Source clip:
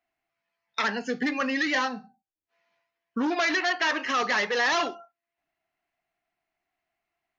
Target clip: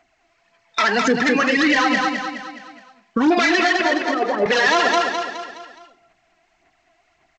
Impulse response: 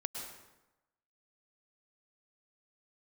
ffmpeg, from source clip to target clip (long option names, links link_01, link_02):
-filter_complex "[0:a]acompressor=threshold=-32dB:ratio=5,aphaser=in_gain=1:out_gain=1:delay=3.1:decay=0.58:speed=1.8:type=sinusoidal,asettb=1/sr,asplit=3[link_01][link_02][link_03];[link_01]atrim=end=3.814[link_04];[link_02]atrim=start=3.81:end=4.46,asetpts=PTS-STARTPTS,afade=type=in:duration=0.004:curve=qsin,afade=type=out:start_time=0.646:duration=0.004:curve=qsin,asuperpass=centerf=390:order=4:qfactor=0.79[link_05];[link_03]atrim=start=4.456[link_06];[link_04][link_05]acrossfade=duration=0.004:curve1=hsin:curve2=qsin[link_07];[link_07][link_06]acrossfade=duration=0.004:curve1=qsin:curve2=hsin,aecho=1:1:209|418|627|836|1045:0.473|0.218|0.1|0.0461|0.0212,alimiter=level_in=25dB:limit=-1dB:release=50:level=0:latency=1,volume=-7.5dB" -ar 16000 -c:a g722